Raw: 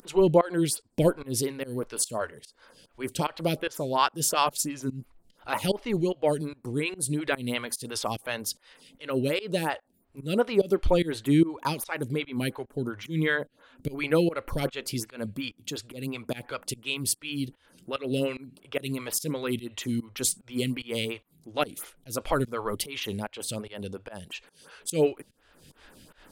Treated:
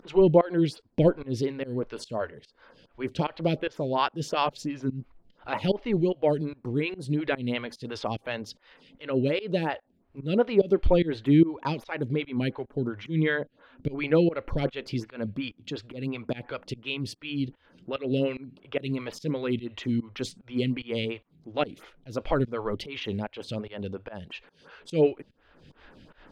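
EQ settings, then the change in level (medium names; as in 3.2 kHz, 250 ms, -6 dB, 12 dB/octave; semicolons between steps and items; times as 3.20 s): dynamic bell 1.2 kHz, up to -5 dB, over -44 dBFS, Q 1.4; distance through air 230 m; +2.5 dB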